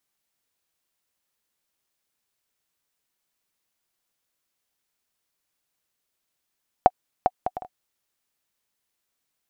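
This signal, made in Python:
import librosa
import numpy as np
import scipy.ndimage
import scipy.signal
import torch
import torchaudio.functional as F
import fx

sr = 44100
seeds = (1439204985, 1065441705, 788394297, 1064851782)

y = fx.bouncing_ball(sr, first_gap_s=0.4, ratio=0.51, hz=738.0, decay_ms=43.0, level_db=-1.5)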